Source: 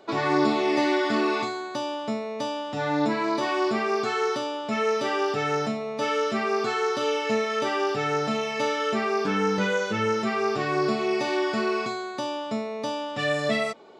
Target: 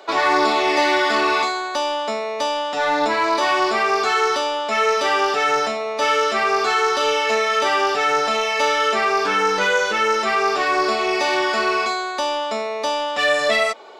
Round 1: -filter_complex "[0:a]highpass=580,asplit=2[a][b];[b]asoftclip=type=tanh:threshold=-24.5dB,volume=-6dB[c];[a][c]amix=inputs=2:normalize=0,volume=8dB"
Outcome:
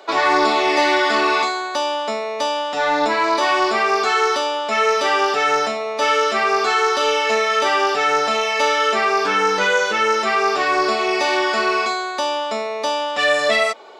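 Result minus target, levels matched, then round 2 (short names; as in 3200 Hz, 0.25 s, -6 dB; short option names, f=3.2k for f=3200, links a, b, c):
soft clip: distortion -7 dB
-filter_complex "[0:a]highpass=580,asplit=2[a][b];[b]asoftclip=type=tanh:threshold=-32.5dB,volume=-6dB[c];[a][c]amix=inputs=2:normalize=0,volume=8dB"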